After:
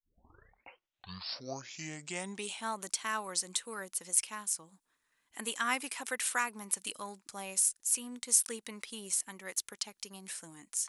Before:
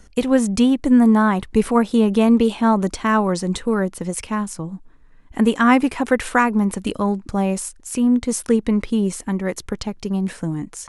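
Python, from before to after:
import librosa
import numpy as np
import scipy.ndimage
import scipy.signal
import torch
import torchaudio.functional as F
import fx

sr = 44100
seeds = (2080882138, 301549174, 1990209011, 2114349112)

y = fx.tape_start_head(x, sr, length_s=2.69)
y = np.diff(y, prepend=0.0)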